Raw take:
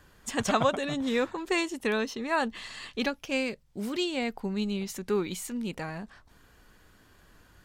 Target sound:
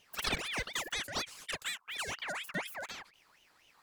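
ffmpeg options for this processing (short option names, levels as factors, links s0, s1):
-af "asetrate=88200,aresample=44100,aeval=exprs='val(0)*sin(2*PI*2000*n/s+2000*0.5/4.1*sin(2*PI*4.1*n/s))':c=same,volume=0.531"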